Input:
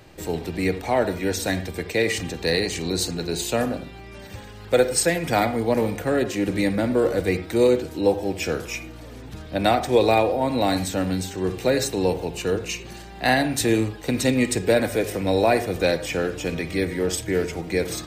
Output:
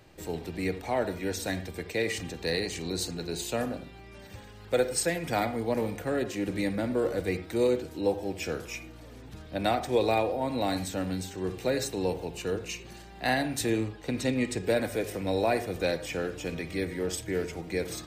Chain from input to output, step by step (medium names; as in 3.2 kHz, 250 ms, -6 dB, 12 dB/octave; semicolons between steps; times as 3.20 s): 13.70–14.64 s: treble shelf 9 kHz -10.5 dB; trim -7.5 dB